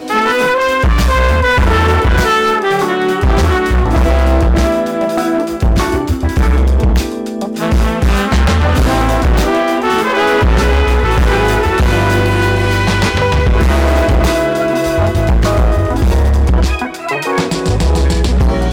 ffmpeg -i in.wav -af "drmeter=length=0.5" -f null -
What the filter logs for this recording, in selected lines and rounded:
Channel 1: DR: -1.0
Overall DR: -1.0